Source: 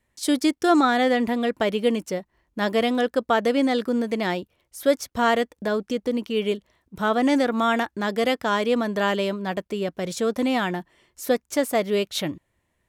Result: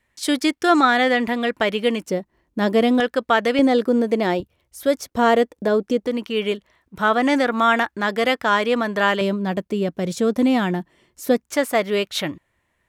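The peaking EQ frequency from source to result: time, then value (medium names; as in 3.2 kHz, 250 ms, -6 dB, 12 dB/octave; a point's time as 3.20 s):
peaking EQ +7 dB 2.2 oct
2 kHz
from 2.06 s 270 Hz
from 3.00 s 2.1 kHz
from 3.59 s 430 Hz
from 4.40 s 73 Hz
from 5.00 s 390 Hz
from 6.07 s 1.6 kHz
from 9.21 s 200 Hz
from 11.47 s 1.6 kHz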